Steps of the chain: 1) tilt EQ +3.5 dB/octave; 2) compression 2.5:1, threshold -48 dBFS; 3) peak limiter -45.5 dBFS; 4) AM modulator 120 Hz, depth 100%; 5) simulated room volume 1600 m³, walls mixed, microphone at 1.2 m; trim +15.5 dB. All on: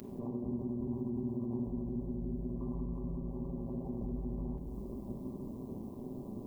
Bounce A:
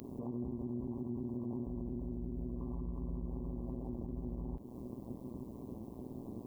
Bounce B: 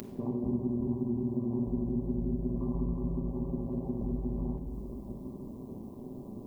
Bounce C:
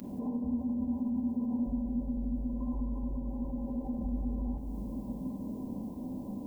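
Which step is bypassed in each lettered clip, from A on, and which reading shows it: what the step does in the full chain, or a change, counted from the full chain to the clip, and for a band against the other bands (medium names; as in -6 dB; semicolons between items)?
5, echo-to-direct -3.5 dB to none; 3, mean gain reduction 3.0 dB; 4, 500 Hz band -8.5 dB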